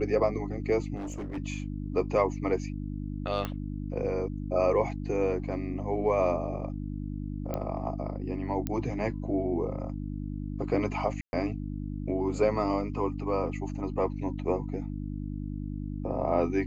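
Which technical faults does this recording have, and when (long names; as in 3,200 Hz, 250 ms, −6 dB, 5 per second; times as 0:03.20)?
mains hum 50 Hz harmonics 6 −35 dBFS
0:00.95–0:01.38: clipping −32.5 dBFS
0:03.45: click −19 dBFS
0:07.54: click −19 dBFS
0:08.67: click −17 dBFS
0:11.21–0:11.33: drop-out 121 ms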